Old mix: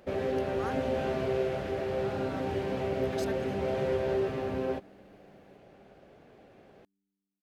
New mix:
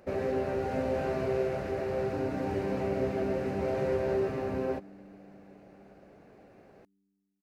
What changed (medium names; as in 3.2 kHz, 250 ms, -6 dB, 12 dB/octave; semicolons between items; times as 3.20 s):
speech: muted; second sound +8.5 dB; master: add peaking EQ 3.3 kHz -11 dB 0.34 oct